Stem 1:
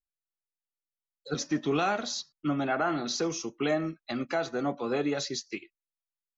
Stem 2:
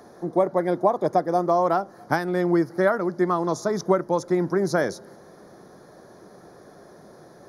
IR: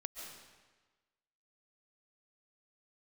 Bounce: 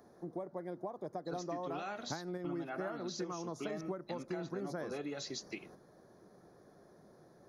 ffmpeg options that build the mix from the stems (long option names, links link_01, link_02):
-filter_complex "[0:a]volume=-4dB,asplit=2[link_01][link_02];[1:a]lowshelf=frequency=400:gain=5,volume=-9.5dB[link_03];[link_02]apad=whole_len=329902[link_04];[link_03][link_04]sidechaingate=range=-6dB:threshold=-60dB:ratio=16:detection=peak[link_05];[link_01][link_05]amix=inputs=2:normalize=0,acompressor=threshold=-39dB:ratio=4"